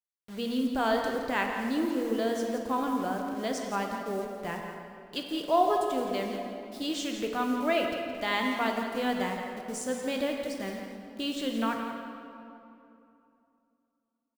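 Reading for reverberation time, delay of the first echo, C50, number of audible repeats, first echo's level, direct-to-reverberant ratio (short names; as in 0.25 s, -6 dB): 2.8 s, 0.169 s, 2.5 dB, 1, -9.5 dB, 1.5 dB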